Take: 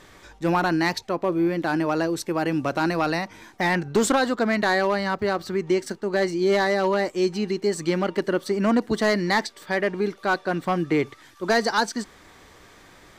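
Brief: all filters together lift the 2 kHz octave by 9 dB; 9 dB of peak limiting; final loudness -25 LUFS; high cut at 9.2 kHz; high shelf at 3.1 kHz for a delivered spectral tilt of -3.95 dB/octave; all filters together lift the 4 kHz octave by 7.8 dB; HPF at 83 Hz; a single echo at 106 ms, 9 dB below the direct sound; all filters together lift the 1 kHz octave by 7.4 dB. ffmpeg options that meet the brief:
-af "highpass=83,lowpass=9200,equalizer=f=1000:t=o:g=7.5,equalizer=f=2000:t=o:g=6.5,highshelf=f=3100:g=3,equalizer=f=4000:t=o:g=5,alimiter=limit=0.299:level=0:latency=1,aecho=1:1:106:0.355,volume=0.708"

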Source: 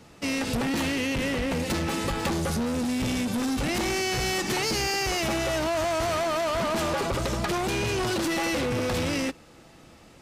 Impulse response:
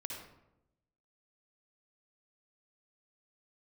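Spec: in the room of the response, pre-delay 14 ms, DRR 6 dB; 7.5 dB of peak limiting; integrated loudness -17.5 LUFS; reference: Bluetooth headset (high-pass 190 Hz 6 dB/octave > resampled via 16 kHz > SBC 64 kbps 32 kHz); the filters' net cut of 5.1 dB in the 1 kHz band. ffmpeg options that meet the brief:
-filter_complex "[0:a]equalizer=f=1000:t=o:g=-7,alimiter=level_in=1.06:limit=0.0631:level=0:latency=1,volume=0.944,asplit=2[s0][s1];[1:a]atrim=start_sample=2205,adelay=14[s2];[s1][s2]afir=irnorm=-1:irlink=0,volume=0.562[s3];[s0][s3]amix=inputs=2:normalize=0,highpass=f=190:p=1,aresample=16000,aresample=44100,volume=4.22" -ar 32000 -c:a sbc -b:a 64k

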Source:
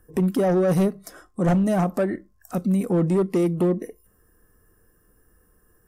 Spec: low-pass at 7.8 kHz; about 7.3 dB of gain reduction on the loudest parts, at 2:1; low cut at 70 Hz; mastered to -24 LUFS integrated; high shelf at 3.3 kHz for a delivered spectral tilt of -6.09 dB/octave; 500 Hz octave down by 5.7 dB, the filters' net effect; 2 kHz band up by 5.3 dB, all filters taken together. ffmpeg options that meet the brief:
-af "highpass=70,lowpass=7800,equalizer=f=500:t=o:g=-8.5,equalizer=f=2000:t=o:g=5.5,highshelf=f=3300:g=6,acompressor=threshold=0.0251:ratio=2,volume=2.37"

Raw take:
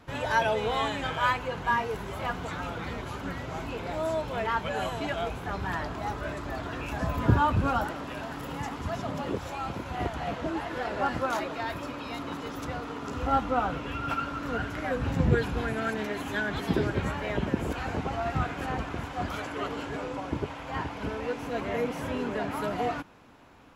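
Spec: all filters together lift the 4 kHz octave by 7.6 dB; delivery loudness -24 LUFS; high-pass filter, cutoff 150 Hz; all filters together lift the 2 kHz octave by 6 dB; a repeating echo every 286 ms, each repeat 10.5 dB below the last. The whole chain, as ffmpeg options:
-af "highpass=150,equalizer=f=2000:t=o:g=6.5,equalizer=f=4000:t=o:g=7.5,aecho=1:1:286|572|858:0.299|0.0896|0.0269,volume=1.68"

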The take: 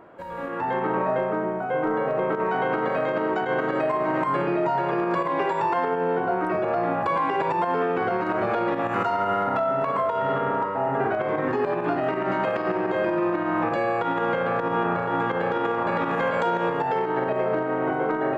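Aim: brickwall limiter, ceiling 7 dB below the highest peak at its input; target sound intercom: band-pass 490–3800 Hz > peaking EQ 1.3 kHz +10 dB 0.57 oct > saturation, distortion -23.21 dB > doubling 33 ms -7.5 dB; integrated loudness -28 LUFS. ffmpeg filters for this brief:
-filter_complex "[0:a]alimiter=limit=0.106:level=0:latency=1,highpass=490,lowpass=3800,equalizer=f=1300:t=o:w=0.57:g=10,asoftclip=threshold=0.158,asplit=2[s0][s1];[s1]adelay=33,volume=0.422[s2];[s0][s2]amix=inputs=2:normalize=0,volume=0.794"

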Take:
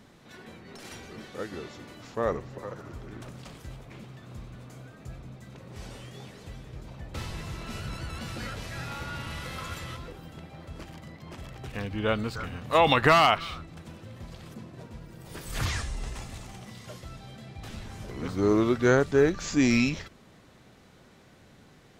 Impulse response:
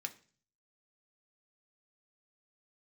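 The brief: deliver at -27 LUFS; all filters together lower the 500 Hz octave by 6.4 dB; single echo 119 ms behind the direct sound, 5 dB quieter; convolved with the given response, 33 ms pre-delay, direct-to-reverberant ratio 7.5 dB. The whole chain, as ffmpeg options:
-filter_complex "[0:a]equalizer=f=500:t=o:g=-8.5,aecho=1:1:119:0.562,asplit=2[s0][s1];[1:a]atrim=start_sample=2205,adelay=33[s2];[s1][s2]afir=irnorm=-1:irlink=0,volume=0.501[s3];[s0][s3]amix=inputs=2:normalize=0,volume=1.19"

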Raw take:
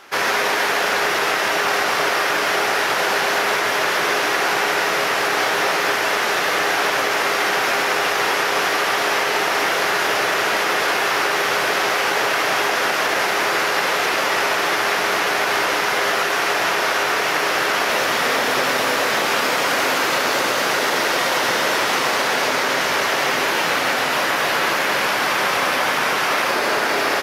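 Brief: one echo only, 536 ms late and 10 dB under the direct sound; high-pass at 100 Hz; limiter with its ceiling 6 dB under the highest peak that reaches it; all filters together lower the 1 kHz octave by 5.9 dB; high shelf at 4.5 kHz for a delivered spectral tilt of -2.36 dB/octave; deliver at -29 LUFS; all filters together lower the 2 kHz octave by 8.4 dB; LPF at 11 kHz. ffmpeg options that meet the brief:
-af "highpass=100,lowpass=11000,equalizer=f=1000:t=o:g=-5,equalizer=f=2000:t=o:g=-7.5,highshelf=f=4500:g=-9,alimiter=limit=0.133:level=0:latency=1,aecho=1:1:536:0.316,volume=0.668"

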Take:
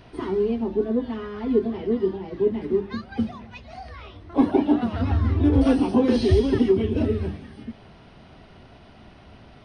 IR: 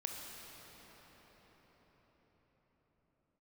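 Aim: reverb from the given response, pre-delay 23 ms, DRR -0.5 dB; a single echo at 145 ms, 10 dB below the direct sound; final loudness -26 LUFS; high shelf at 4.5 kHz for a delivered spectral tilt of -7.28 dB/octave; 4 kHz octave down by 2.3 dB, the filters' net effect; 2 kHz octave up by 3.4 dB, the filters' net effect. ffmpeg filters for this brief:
-filter_complex "[0:a]equalizer=f=2000:t=o:g=5,equalizer=f=4000:t=o:g=-9,highshelf=f=4500:g=7.5,aecho=1:1:145:0.316,asplit=2[s0][s1];[1:a]atrim=start_sample=2205,adelay=23[s2];[s1][s2]afir=irnorm=-1:irlink=0,volume=1.06[s3];[s0][s3]amix=inputs=2:normalize=0,volume=0.473"

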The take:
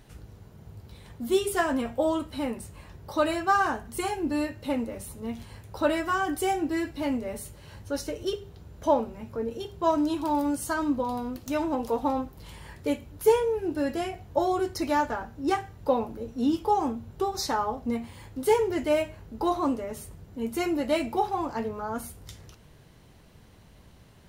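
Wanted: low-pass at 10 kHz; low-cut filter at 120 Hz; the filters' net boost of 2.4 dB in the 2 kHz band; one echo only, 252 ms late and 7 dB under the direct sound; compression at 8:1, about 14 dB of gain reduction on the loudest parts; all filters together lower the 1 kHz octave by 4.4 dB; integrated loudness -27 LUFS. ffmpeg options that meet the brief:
-af "highpass=120,lowpass=10000,equalizer=f=1000:t=o:g=-7,equalizer=f=2000:t=o:g=6,acompressor=threshold=0.0316:ratio=8,aecho=1:1:252:0.447,volume=2.51"

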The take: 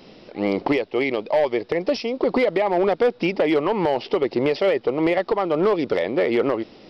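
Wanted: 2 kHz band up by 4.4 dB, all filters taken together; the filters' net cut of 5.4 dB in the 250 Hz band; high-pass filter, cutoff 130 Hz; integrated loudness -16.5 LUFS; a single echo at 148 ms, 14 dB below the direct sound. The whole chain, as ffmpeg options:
-af "highpass=130,equalizer=f=250:t=o:g=-8,equalizer=f=2000:t=o:g=5,aecho=1:1:148:0.2,volume=2"

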